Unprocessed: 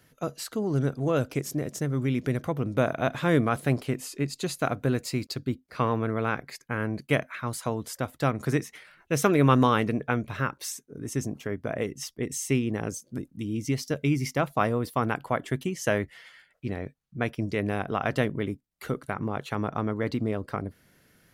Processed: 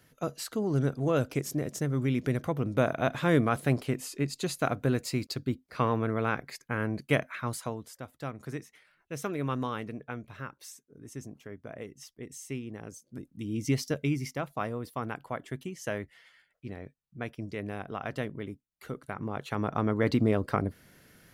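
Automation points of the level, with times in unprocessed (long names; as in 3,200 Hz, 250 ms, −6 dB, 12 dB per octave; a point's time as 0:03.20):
0:07.51 −1.5 dB
0:07.96 −12 dB
0:12.90 −12 dB
0:13.74 +0.5 dB
0:14.43 −8.5 dB
0:18.86 −8.5 dB
0:20.14 +3.5 dB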